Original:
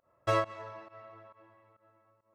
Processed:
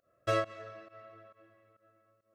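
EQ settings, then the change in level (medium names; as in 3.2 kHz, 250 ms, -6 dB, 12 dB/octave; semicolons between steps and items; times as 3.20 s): Butterworth band-stop 920 Hz, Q 1.9; bass shelf 160 Hz -3.5 dB; band-stop 2.1 kHz, Q 12; 0.0 dB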